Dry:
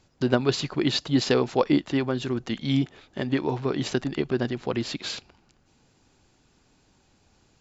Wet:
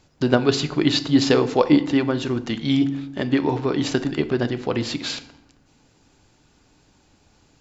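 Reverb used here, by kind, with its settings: FDN reverb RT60 0.8 s, low-frequency decay 1.35×, high-frequency decay 0.7×, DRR 10.5 dB; trim +4 dB

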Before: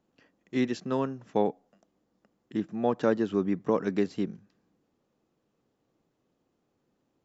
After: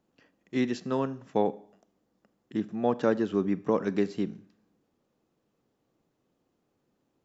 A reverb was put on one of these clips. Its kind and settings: Schroeder reverb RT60 0.57 s, combs from 29 ms, DRR 17 dB

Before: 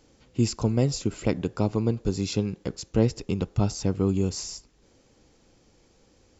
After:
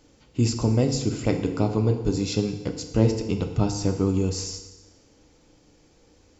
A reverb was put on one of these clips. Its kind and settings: FDN reverb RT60 1.2 s, low-frequency decay 1×, high-frequency decay 0.9×, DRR 5 dB; trim +1 dB

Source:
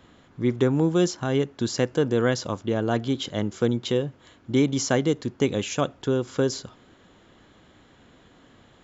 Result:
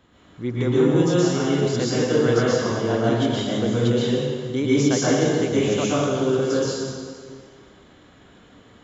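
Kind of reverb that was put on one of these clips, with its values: plate-style reverb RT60 1.9 s, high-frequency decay 0.85×, pre-delay 105 ms, DRR -8 dB; trim -4.5 dB

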